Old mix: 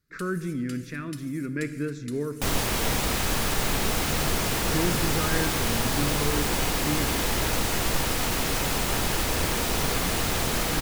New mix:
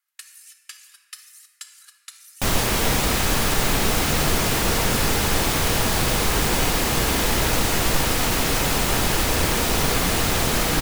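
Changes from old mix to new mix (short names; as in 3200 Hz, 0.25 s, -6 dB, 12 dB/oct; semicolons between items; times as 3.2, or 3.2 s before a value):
speech: muted; first sound +6.0 dB; second sound +5.0 dB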